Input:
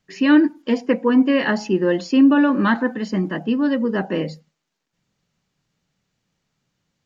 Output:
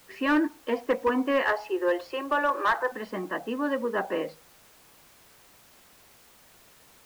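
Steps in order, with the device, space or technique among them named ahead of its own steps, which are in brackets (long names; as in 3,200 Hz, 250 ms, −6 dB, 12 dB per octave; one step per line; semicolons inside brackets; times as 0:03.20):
0:01.42–0:02.92: Butterworth high-pass 340 Hz 48 dB per octave
drive-through speaker (band-pass filter 530–3,300 Hz; parametric band 1,100 Hz +5 dB 0.28 octaves; hard clipping −16 dBFS, distortion −16 dB; white noise bed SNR 21 dB)
high-shelf EQ 2,300 Hz −9 dB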